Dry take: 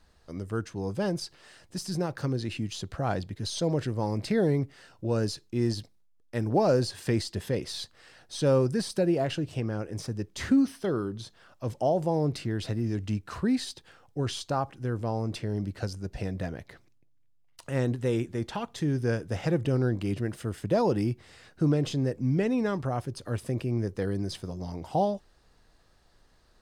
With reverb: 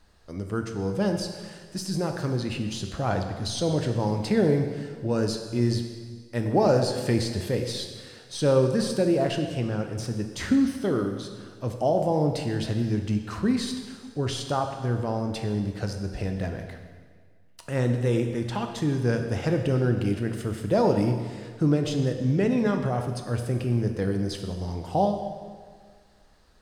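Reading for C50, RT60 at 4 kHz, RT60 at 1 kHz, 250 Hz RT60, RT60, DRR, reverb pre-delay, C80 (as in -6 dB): 6.5 dB, 1.6 s, 1.7 s, 1.8 s, 1.7 s, 4.5 dB, 6 ms, 8.0 dB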